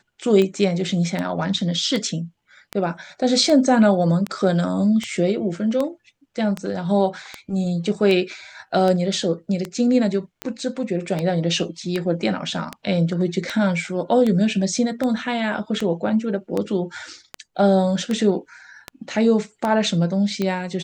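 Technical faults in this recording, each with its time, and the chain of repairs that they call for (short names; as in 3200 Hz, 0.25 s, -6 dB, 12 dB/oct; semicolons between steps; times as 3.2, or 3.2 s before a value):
tick 78 rpm -11 dBFS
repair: de-click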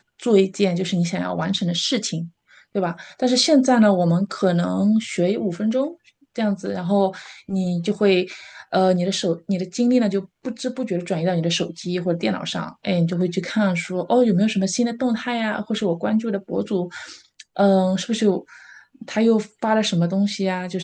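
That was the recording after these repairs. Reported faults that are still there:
none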